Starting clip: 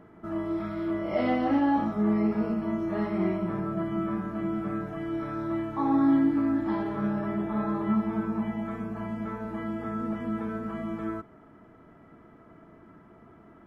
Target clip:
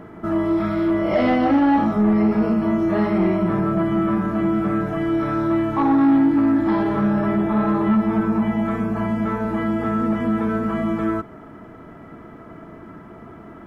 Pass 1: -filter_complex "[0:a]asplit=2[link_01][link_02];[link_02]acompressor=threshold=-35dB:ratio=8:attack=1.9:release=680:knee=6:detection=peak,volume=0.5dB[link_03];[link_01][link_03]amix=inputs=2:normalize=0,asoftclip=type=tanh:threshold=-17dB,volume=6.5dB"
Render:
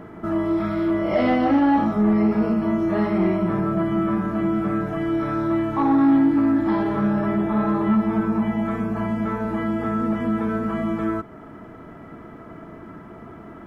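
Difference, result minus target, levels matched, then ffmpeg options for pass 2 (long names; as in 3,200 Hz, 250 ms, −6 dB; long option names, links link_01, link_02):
downward compressor: peak gain reduction +8 dB
-filter_complex "[0:a]asplit=2[link_01][link_02];[link_02]acompressor=threshold=-26dB:ratio=8:attack=1.9:release=680:knee=6:detection=peak,volume=0.5dB[link_03];[link_01][link_03]amix=inputs=2:normalize=0,asoftclip=type=tanh:threshold=-17dB,volume=6.5dB"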